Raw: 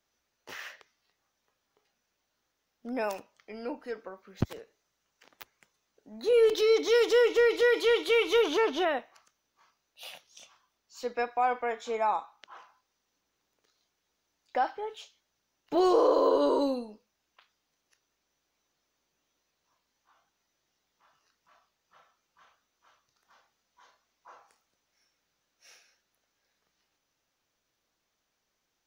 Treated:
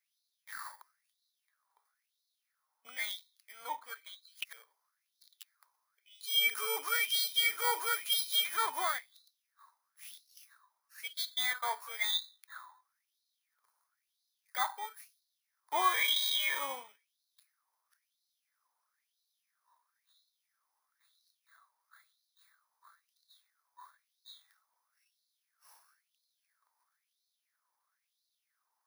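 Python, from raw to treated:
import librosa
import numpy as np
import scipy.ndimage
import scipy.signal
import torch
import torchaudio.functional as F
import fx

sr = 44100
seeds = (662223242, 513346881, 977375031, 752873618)

y = fx.bit_reversed(x, sr, seeds[0], block=16)
y = fx.filter_lfo_highpass(y, sr, shape='sine', hz=1.0, low_hz=920.0, high_hz=4100.0, q=7.9)
y = F.gain(torch.from_numpy(y), -6.0).numpy()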